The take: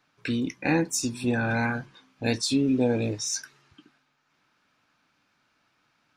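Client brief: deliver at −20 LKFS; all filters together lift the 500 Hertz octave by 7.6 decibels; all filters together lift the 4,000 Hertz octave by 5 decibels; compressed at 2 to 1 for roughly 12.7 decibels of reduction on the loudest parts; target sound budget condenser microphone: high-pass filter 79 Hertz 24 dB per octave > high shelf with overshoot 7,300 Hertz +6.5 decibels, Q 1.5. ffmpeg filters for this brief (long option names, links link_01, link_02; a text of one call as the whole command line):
ffmpeg -i in.wav -af "equalizer=frequency=500:width_type=o:gain=8.5,equalizer=frequency=4000:width_type=o:gain=8,acompressor=threshold=-38dB:ratio=2,highpass=frequency=79:width=0.5412,highpass=frequency=79:width=1.3066,highshelf=frequency=7300:width_type=q:width=1.5:gain=6.5,volume=13.5dB" out.wav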